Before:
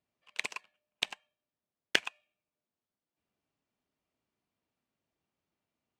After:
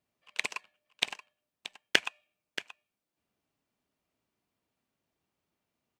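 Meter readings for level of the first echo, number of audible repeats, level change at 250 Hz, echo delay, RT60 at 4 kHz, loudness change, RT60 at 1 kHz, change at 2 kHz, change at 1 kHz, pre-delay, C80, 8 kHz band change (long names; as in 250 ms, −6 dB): −13.0 dB, 1, +3.0 dB, 629 ms, no reverb audible, +2.0 dB, no reverb audible, +3.0 dB, +3.0 dB, no reverb audible, no reverb audible, +3.0 dB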